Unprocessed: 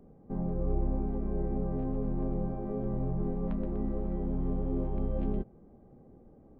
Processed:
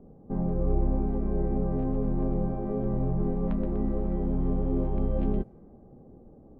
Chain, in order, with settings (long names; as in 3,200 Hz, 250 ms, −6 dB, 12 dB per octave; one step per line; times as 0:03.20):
low-pass that shuts in the quiet parts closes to 920 Hz, open at −27 dBFS
level +4.5 dB